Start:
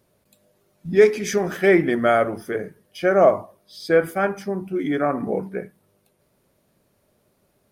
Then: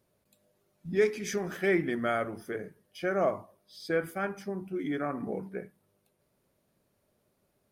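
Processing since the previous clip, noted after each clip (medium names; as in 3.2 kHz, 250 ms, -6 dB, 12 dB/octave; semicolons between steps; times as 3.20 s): dynamic bell 610 Hz, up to -5 dB, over -27 dBFS, Q 1; trim -8.5 dB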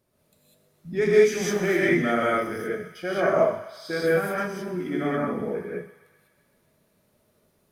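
thinning echo 127 ms, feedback 72%, high-pass 740 Hz, level -14 dB; gated-style reverb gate 220 ms rising, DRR -6.5 dB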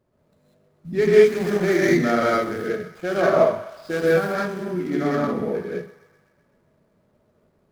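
median filter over 15 samples; trim +4 dB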